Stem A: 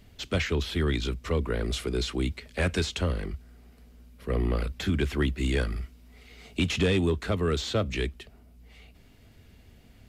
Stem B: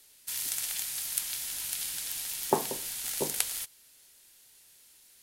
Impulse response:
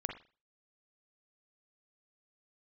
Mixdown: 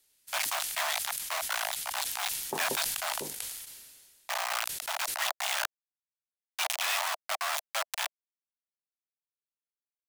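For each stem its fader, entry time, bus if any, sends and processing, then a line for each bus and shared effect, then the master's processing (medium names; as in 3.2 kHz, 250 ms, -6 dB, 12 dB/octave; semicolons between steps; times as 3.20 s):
-3.0 dB, 0.00 s, no send, bit crusher 4-bit; steep high-pass 640 Hz 72 dB/octave
-11.0 dB, 0.00 s, no send, none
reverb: none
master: decay stretcher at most 34 dB/s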